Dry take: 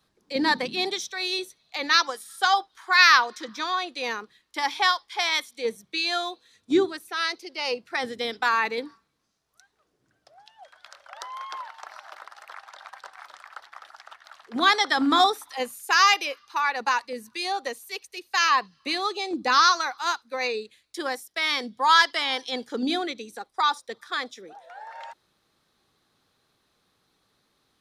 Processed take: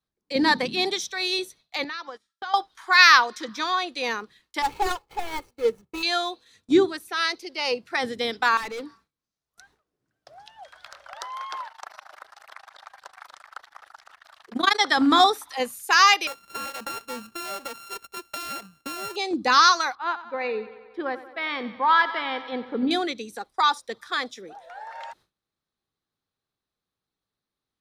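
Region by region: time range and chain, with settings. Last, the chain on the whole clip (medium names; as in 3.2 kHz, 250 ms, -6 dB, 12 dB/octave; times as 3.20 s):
1.84–2.54 s: gate -39 dBFS, range -17 dB + compression 2.5:1, threshold -37 dBFS + distance through air 170 m
4.62–6.03 s: median filter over 25 samples + comb 2.3 ms, depth 47%
8.57–11.16 s: hard clipper -29.5 dBFS + three bands compressed up and down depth 40%
11.68–14.80 s: treble shelf 8.3 kHz +5 dB + AM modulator 26 Hz, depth 90%
16.27–19.16 s: sorted samples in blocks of 32 samples + compression 12:1, threshold -31 dBFS
19.95–22.91 s: distance through air 470 m + thinning echo 92 ms, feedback 72%, high-pass 190 Hz, level -14.5 dB + tape noise reduction on one side only decoder only
whole clip: gate with hold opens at -47 dBFS; bass shelf 130 Hz +7 dB; trim +2 dB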